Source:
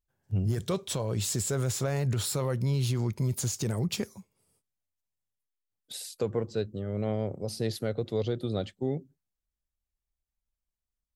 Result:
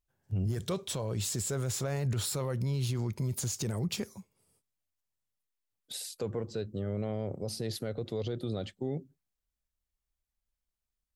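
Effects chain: limiter -24.5 dBFS, peak gain reduction 6 dB

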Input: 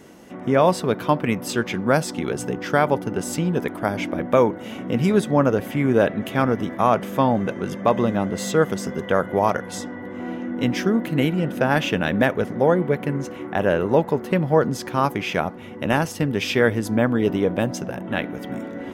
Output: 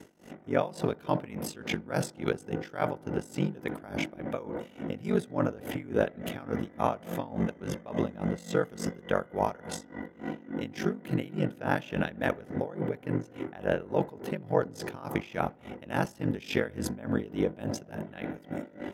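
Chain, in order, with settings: notch 1100 Hz, Q 11; in parallel at -2.5 dB: negative-ratio compressor -23 dBFS; on the sum: ring modulator 24 Hz; dark delay 69 ms, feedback 70%, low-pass 1200 Hz, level -14.5 dB; dB-linear tremolo 3.5 Hz, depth 20 dB; gain -6 dB

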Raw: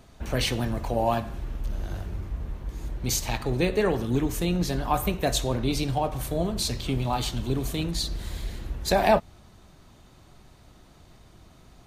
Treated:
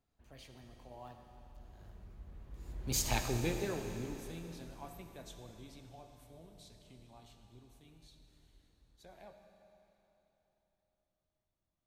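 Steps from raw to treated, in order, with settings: Doppler pass-by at 3.11, 19 m/s, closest 2.9 m; on a send: reverb RT60 3.5 s, pre-delay 20 ms, DRR 6 dB; on the sum: gain -4 dB

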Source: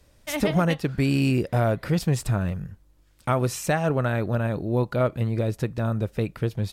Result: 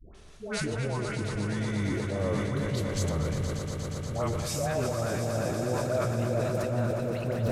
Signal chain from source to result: speed glide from 69% -> 110%; wow and flutter 16 cents; reverse; compressor 5:1, threshold -35 dBFS, peak gain reduction 17 dB; reverse; limiter -29 dBFS, peak gain reduction 6 dB; bell 610 Hz +5.5 dB 0.39 oct; dispersion highs, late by 0.148 s, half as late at 730 Hz; on a send: swelling echo 0.119 s, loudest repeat 5, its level -10.5 dB; on the sum: sustainer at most 23 dB/s; gain +6 dB

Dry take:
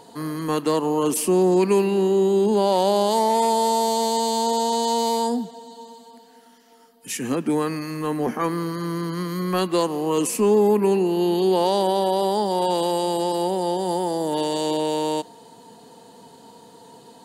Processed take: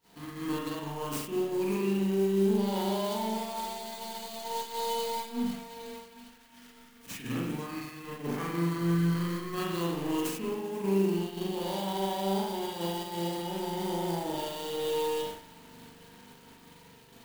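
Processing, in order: zero-crossing step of -32.5 dBFS; bell 590 Hz -12 dB 2.3 oct; compressor 5:1, threshold -31 dBFS, peak gain reduction 9 dB; on a send: swung echo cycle 0.816 s, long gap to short 1.5:1, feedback 37%, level -18 dB; on the sum: spring tank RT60 1 s, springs 41 ms, chirp 75 ms, DRR -5.5 dB; expander -26 dBFS; clock jitter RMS 0.025 ms; gain -3.5 dB

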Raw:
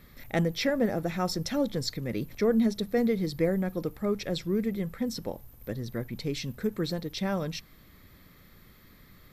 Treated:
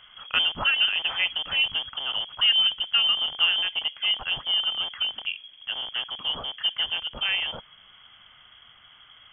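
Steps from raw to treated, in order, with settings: rattling part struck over -36 dBFS, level -35 dBFS; low shelf 260 Hz -6 dB; inverted band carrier 3300 Hz; gain +5.5 dB

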